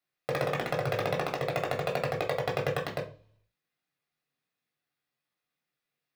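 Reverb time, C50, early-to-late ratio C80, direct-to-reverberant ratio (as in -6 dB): 0.40 s, 10.5 dB, 17.0 dB, -1.5 dB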